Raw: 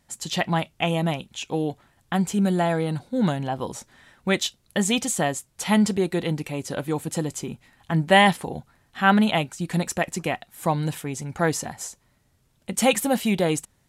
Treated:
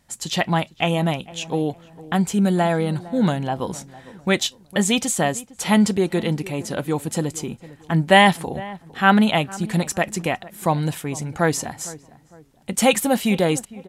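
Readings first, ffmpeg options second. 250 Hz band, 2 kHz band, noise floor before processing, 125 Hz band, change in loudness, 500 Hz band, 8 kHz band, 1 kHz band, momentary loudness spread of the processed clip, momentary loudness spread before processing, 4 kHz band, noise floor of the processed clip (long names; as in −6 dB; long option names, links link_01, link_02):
+3.0 dB, +3.0 dB, −65 dBFS, +3.0 dB, +3.0 dB, +3.0 dB, +3.0 dB, +3.0 dB, 13 LU, 12 LU, +3.0 dB, −54 dBFS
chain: -filter_complex "[0:a]asplit=2[link_01][link_02];[link_02]adelay=456,lowpass=frequency=1300:poles=1,volume=-18dB,asplit=2[link_03][link_04];[link_04]adelay=456,lowpass=frequency=1300:poles=1,volume=0.38,asplit=2[link_05][link_06];[link_06]adelay=456,lowpass=frequency=1300:poles=1,volume=0.38[link_07];[link_01][link_03][link_05][link_07]amix=inputs=4:normalize=0,volume=3dB"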